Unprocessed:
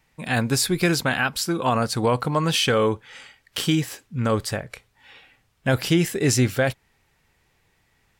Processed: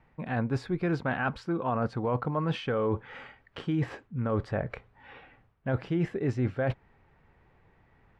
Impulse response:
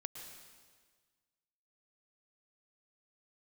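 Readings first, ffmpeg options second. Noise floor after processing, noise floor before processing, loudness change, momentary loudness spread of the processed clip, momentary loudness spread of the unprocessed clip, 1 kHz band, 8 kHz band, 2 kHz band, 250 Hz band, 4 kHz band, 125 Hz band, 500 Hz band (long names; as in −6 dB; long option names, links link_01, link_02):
−65 dBFS, −66 dBFS, −8.5 dB, 10 LU, 9 LU, −7.5 dB, below −30 dB, −10.5 dB, −7.0 dB, −20.5 dB, −6.0 dB, −7.5 dB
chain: -af "lowpass=1400,areverse,acompressor=threshold=-33dB:ratio=4,areverse,volume=5dB"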